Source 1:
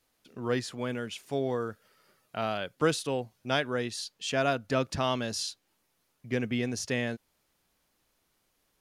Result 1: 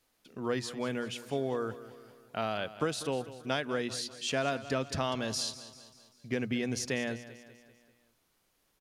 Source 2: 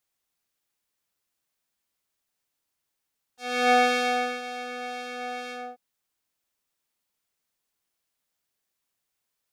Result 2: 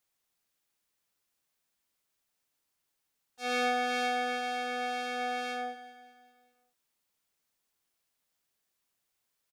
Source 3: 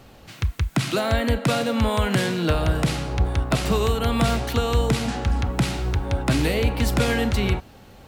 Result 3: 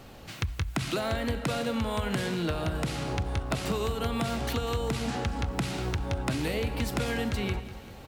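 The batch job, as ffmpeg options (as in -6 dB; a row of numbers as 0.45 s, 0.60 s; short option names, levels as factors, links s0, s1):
-af "bandreject=f=60:t=h:w=6,bandreject=f=120:t=h:w=6,acompressor=threshold=0.0447:ratio=6,aecho=1:1:195|390|585|780|975:0.178|0.0925|0.0481|0.025|0.013"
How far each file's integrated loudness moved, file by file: -2.5 LU, -6.0 LU, -8.0 LU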